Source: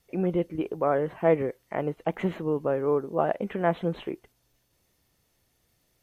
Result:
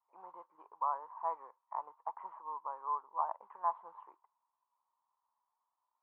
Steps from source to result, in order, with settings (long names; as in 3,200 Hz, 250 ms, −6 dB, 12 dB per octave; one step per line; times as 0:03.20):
noise that follows the level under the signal 21 dB
flat-topped band-pass 990 Hz, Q 4.9
level +4.5 dB